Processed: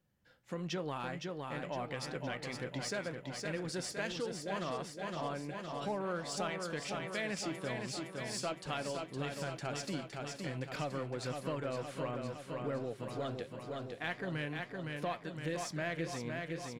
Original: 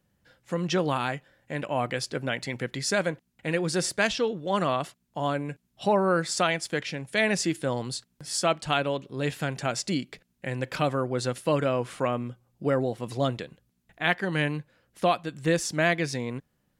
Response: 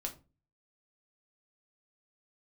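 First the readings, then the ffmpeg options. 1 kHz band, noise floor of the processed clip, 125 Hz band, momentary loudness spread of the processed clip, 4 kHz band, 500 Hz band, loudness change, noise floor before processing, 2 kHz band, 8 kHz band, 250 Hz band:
−11.5 dB, −53 dBFS, −10.0 dB, 4 LU, −10.5 dB, −11.5 dB, −11.5 dB, −73 dBFS, −11.5 dB, −11.0 dB, −10.5 dB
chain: -filter_complex "[0:a]asplit=2[link_01][link_02];[link_02]asoftclip=type=tanh:threshold=-23.5dB,volume=-3.5dB[link_03];[link_01][link_03]amix=inputs=2:normalize=0,equalizer=frequency=9400:width=1.2:gain=-3.5,flanger=delay=5.3:depth=7.6:regen=76:speed=1.4:shape=triangular,aecho=1:1:513|1026|1539|2052|2565|3078|3591|4104:0.501|0.301|0.18|0.108|0.065|0.039|0.0234|0.014,acompressor=threshold=-30dB:ratio=2,volume=-7.5dB"

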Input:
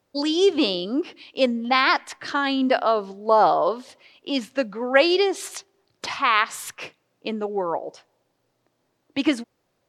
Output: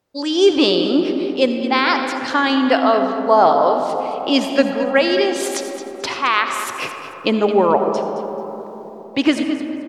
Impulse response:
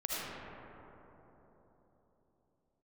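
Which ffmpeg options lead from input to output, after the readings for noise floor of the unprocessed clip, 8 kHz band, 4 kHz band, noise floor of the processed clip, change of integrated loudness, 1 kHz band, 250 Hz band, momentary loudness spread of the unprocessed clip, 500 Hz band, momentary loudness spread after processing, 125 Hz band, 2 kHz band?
−72 dBFS, +6.0 dB, +5.0 dB, −35 dBFS, +4.5 dB, +5.0 dB, +7.0 dB, 17 LU, +6.5 dB, 13 LU, can't be measured, +3.5 dB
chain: -filter_complex "[0:a]dynaudnorm=framelen=130:gausssize=5:maxgain=16dB,aecho=1:1:219|438|657:0.237|0.0569|0.0137,asplit=2[link_01][link_02];[1:a]atrim=start_sample=2205[link_03];[link_02][link_03]afir=irnorm=-1:irlink=0,volume=-9dB[link_04];[link_01][link_04]amix=inputs=2:normalize=0,volume=-4dB"

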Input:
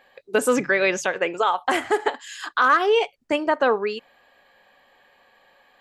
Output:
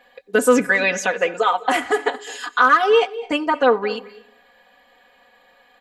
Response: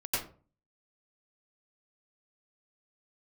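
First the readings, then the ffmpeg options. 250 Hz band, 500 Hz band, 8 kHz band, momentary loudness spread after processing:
+4.0 dB, +3.0 dB, +3.0 dB, 11 LU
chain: -filter_complex "[0:a]aecho=1:1:4.1:0.97,asplit=2[link_01][link_02];[1:a]atrim=start_sample=2205,asetrate=35280,aresample=44100,adelay=91[link_03];[link_02][link_03]afir=irnorm=-1:irlink=0,volume=-25dB[link_04];[link_01][link_04]amix=inputs=2:normalize=0"

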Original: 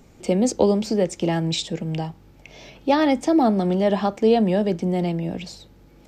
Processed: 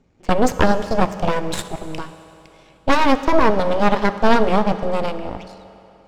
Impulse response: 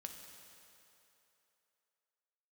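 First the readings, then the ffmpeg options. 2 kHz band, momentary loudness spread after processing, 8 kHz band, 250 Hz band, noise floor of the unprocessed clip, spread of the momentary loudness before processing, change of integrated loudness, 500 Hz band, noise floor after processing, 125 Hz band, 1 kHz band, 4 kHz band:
+10.0 dB, 14 LU, −1.0 dB, −1.0 dB, −51 dBFS, 11 LU, +2.5 dB, +1.5 dB, −51 dBFS, −1.5 dB, +7.0 dB, +1.5 dB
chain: -filter_complex "[0:a]aeval=exprs='0.596*(cos(1*acos(clip(val(0)/0.596,-1,1)))-cos(1*PI/2))+0.133*(cos(3*acos(clip(val(0)/0.596,-1,1)))-cos(3*PI/2))+0.237*(cos(6*acos(clip(val(0)/0.596,-1,1)))-cos(6*PI/2))':channel_layout=same,adynamicsmooth=sensitivity=7:basefreq=5400,asplit=2[link_01][link_02];[1:a]atrim=start_sample=2205[link_03];[link_02][link_03]afir=irnorm=-1:irlink=0,volume=3dB[link_04];[link_01][link_04]amix=inputs=2:normalize=0,volume=-4dB"

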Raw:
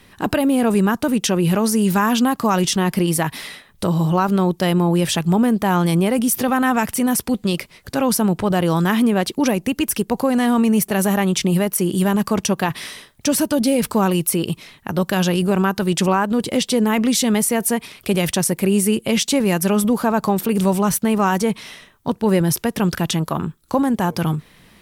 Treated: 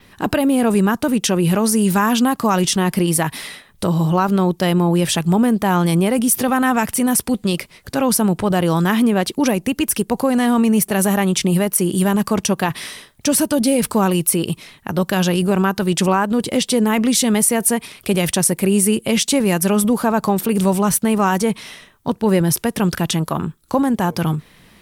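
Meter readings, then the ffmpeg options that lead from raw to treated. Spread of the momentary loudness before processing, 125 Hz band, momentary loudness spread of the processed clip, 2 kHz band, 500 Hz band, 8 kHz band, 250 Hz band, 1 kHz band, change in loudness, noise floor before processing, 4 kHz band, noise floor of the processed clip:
6 LU, +1.0 dB, 7 LU, +1.0 dB, +1.0 dB, +3.5 dB, +1.0 dB, +1.0 dB, +1.5 dB, −52 dBFS, +1.0 dB, −51 dBFS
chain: -af "adynamicequalizer=threshold=0.0158:dfrequency=9400:dqfactor=2.2:tfrequency=9400:tqfactor=2.2:attack=5:release=100:ratio=0.375:range=2.5:mode=boostabove:tftype=bell,volume=1dB"

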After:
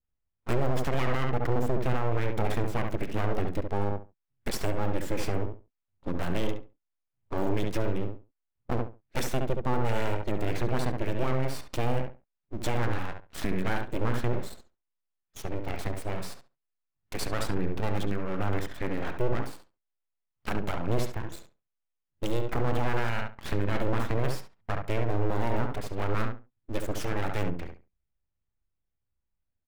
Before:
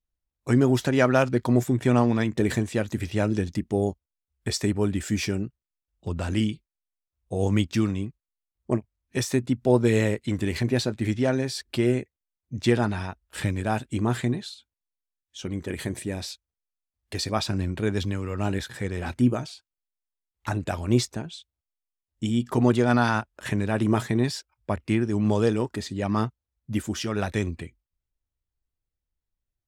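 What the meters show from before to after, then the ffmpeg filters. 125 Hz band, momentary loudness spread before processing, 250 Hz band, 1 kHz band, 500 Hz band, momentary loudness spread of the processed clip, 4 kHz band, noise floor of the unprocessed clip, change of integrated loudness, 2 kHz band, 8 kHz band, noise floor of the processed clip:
−5.0 dB, 13 LU, −9.5 dB, −2.0 dB, −5.0 dB, 10 LU, −7.5 dB, below −85 dBFS, −6.5 dB, −4.5 dB, −8.0 dB, −83 dBFS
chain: -filter_complex "[0:a]acrossover=split=3300[link_01][link_02];[link_02]acrusher=bits=4:dc=4:mix=0:aa=0.000001[link_03];[link_01][link_03]amix=inputs=2:normalize=0,aeval=exprs='abs(val(0))':channel_layout=same,asplit=2[link_04][link_05];[link_05]adelay=69,lowpass=frequency=2100:poles=1,volume=-5.5dB,asplit=2[link_06][link_07];[link_07]adelay=69,lowpass=frequency=2100:poles=1,volume=0.2,asplit=2[link_08][link_09];[link_09]adelay=69,lowpass=frequency=2100:poles=1,volume=0.2[link_10];[link_04][link_06][link_08][link_10]amix=inputs=4:normalize=0,alimiter=limit=-15.5dB:level=0:latency=1:release=34,adynamicequalizer=threshold=0.00398:dfrequency=2800:dqfactor=0.7:tfrequency=2800:tqfactor=0.7:attack=5:release=100:ratio=0.375:range=2.5:mode=cutabove:tftype=highshelf"

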